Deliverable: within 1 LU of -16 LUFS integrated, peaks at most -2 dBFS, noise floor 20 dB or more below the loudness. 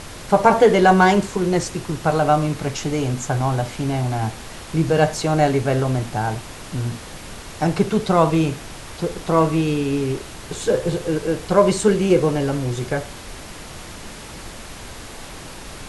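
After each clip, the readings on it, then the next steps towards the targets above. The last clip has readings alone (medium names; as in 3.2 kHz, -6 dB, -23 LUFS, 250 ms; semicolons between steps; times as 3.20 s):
noise floor -37 dBFS; noise floor target -40 dBFS; loudness -20.0 LUFS; peak level -1.5 dBFS; loudness target -16.0 LUFS
-> noise print and reduce 6 dB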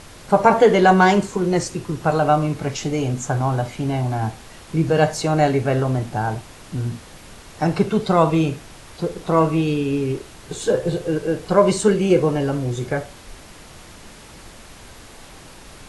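noise floor -43 dBFS; loudness -20.0 LUFS; peak level -1.5 dBFS; loudness target -16.0 LUFS
-> trim +4 dB; peak limiter -2 dBFS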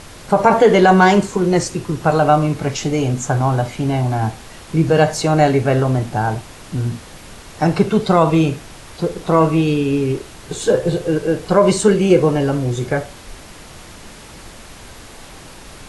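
loudness -16.5 LUFS; peak level -2.0 dBFS; noise floor -39 dBFS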